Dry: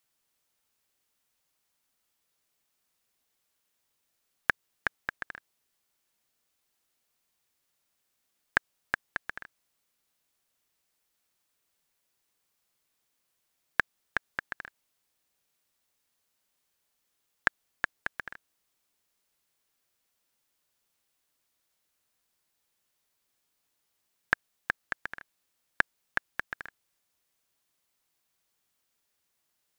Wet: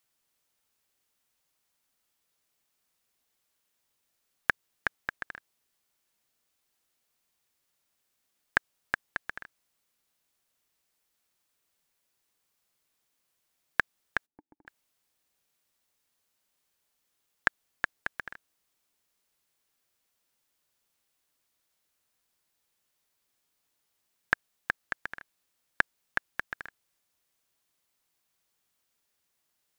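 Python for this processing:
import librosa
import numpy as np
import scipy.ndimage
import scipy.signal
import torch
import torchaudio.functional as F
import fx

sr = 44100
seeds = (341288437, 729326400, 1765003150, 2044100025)

y = fx.formant_cascade(x, sr, vowel='u', at=(14.25, 14.66), fade=0.02)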